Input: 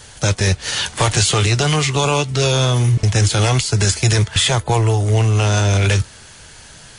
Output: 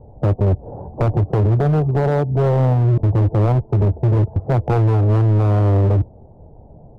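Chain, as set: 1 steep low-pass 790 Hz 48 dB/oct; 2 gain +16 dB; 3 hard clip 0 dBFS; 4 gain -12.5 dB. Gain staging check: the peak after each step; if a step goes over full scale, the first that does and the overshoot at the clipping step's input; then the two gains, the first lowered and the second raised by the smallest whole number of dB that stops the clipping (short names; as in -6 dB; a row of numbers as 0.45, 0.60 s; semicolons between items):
-7.0, +9.0, 0.0, -12.5 dBFS; step 2, 9.0 dB; step 2 +7 dB, step 4 -3.5 dB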